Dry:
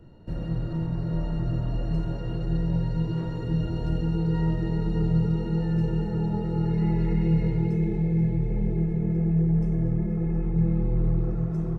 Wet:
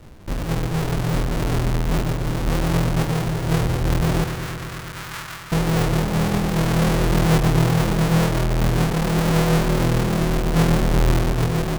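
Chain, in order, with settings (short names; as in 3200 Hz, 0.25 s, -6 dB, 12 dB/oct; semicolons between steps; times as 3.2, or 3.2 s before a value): half-waves squared off; 4.24–5.52 ladder high-pass 950 Hz, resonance 25%; darkening echo 0.114 s, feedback 83%, low-pass 2000 Hz, level -10.5 dB; gain +1.5 dB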